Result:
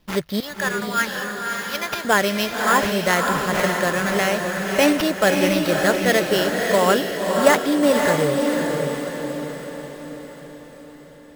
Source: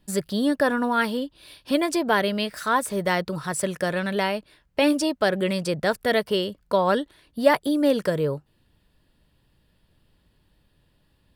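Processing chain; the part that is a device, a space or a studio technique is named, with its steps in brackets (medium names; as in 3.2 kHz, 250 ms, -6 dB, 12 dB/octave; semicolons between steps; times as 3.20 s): 0.40–2.05 s: Bessel high-pass 1.3 kHz, order 2; band-stop 950 Hz, Q 15; early companding sampler (sample-rate reducer 8.4 kHz, jitter 0%; companded quantiser 6-bit); dynamic bell 1.9 kHz, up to +4 dB, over -37 dBFS, Q 0.77; echo that smears into a reverb 569 ms, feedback 52%, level -3 dB; trim +2 dB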